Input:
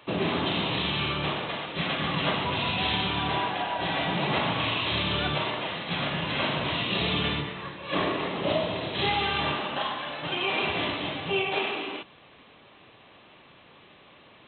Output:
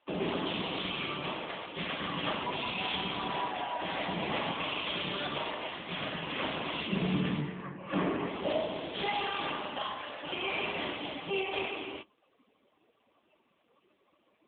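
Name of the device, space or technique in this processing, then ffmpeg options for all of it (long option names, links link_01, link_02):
mobile call with aggressive noise cancelling: -filter_complex "[0:a]asplit=3[link_01][link_02][link_03];[link_01]afade=type=out:start_time=6.87:duration=0.02[link_04];[link_02]bass=frequency=250:gain=11,treble=frequency=4000:gain=-15,afade=type=in:start_time=6.87:duration=0.02,afade=type=out:start_time=8.26:duration=0.02[link_05];[link_03]afade=type=in:start_time=8.26:duration=0.02[link_06];[link_04][link_05][link_06]amix=inputs=3:normalize=0,highpass=frequency=170:width=0.5412,highpass=frequency=170:width=1.3066,afftdn=noise_reduction=16:noise_floor=-45,volume=-4dB" -ar 8000 -c:a libopencore_amrnb -b:a 7950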